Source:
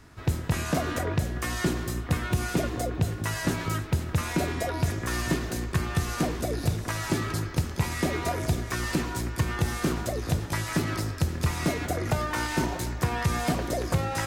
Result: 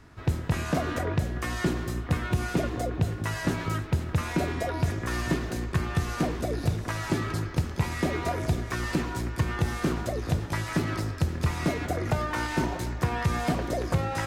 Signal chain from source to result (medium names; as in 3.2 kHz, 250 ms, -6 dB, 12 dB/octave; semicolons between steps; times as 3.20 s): treble shelf 5.1 kHz -8 dB